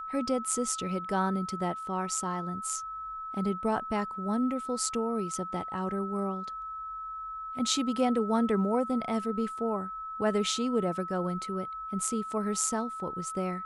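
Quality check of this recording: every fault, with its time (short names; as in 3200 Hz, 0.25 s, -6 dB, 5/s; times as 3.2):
tone 1300 Hz -36 dBFS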